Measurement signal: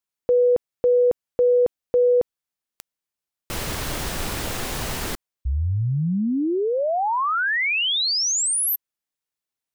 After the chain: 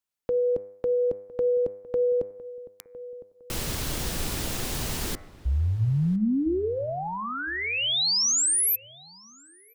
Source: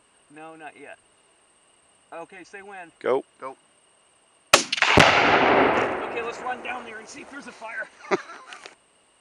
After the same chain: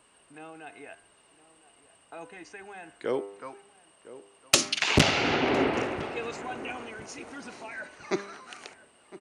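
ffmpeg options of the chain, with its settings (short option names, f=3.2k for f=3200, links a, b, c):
-filter_complex "[0:a]bandreject=f=100:t=h:w=4,bandreject=f=200:t=h:w=4,bandreject=f=300:t=h:w=4,bandreject=f=400:t=h:w=4,bandreject=f=500:t=h:w=4,bandreject=f=600:t=h:w=4,bandreject=f=700:t=h:w=4,bandreject=f=800:t=h:w=4,bandreject=f=900:t=h:w=4,bandreject=f=1k:t=h:w=4,bandreject=f=1.1k:t=h:w=4,bandreject=f=1.2k:t=h:w=4,bandreject=f=1.3k:t=h:w=4,bandreject=f=1.4k:t=h:w=4,bandreject=f=1.5k:t=h:w=4,bandreject=f=1.6k:t=h:w=4,bandreject=f=1.7k:t=h:w=4,bandreject=f=1.8k:t=h:w=4,bandreject=f=1.9k:t=h:w=4,bandreject=f=2k:t=h:w=4,bandreject=f=2.1k:t=h:w=4,bandreject=f=2.2k:t=h:w=4,bandreject=f=2.3k:t=h:w=4,bandreject=f=2.4k:t=h:w=4,acrossover=split=410|3000[a][b][c];[b]acompressor=threshold=-50dB:ratio=1.5:attack=8.3:release=49:knee=2.83:detection=peak[d];[a][d][c]amix=inputs=3:normalize=0,asplit=2[e][f];[f]adelay=1008,lowpass=f=1.6k:p=1,volume=-17dB,asplit=2[g][h];[h]adelay=1008,lowpass=f=1.6k:p=1,volume=0.34,asplit=2[i][j];[j]adelay=1008,lowpass=f=1.6k:p=1,volume=0.34[k];[e][g][i][k]amix=inputs=4:normalize=0,volume=-1dB"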